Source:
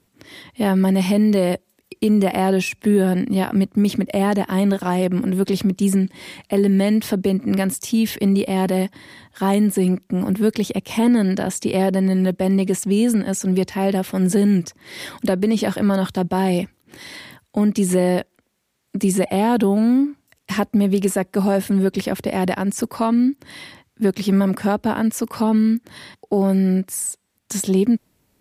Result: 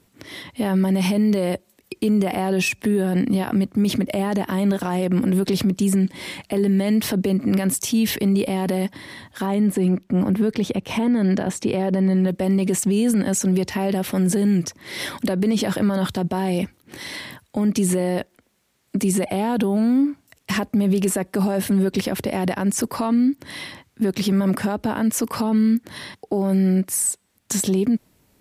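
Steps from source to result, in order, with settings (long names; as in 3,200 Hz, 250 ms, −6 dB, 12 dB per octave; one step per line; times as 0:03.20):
0:09.46–0:12.28: high-shelf EQ 4,800 Hz −11.5 dB
brickwall limiter −16.5 dBFS, peak gain reduction 10.5 dB
level +4 dB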